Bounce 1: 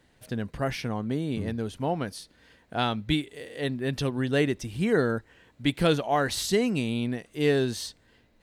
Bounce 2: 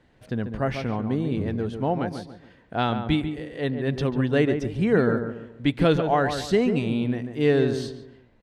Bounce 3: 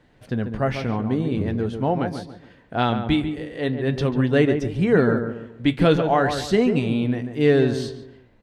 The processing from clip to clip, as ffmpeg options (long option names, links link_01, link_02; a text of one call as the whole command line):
ffmpeg -i in.wav -filter_complex "[0:a]aemphasis=mode=reproduction:type=75fm,asplit=2[link_01][link_02];[link_02]adelay=142,lowpass=frequency=1500:poles=1,volume=-7dB,asplit=2[link_03][link_04];[link_04]adelay=142,lowpass=frequency=1500:poles=1,volume=0.38,asplit=2[link_05][link_06];[link_06]adelay=142,lowpass=frequency=1500:poles=1,volume=0.38,asplit=2[link_07][link_08];[link_08]adelay=142,lowpass=frequency=1500:poles=1,volume=0.38[link_09];[link_01][link_03][link_05][link_07][link_09]amix=inputs=5:normalize=0,volume=2.5dB" out.wav
ffmpeg -i in.wav -af "flanger=delay=6.7:depth=3.9:regen=-70:speed=0.42:shape=sinusoidal,volume=7dB" out.wav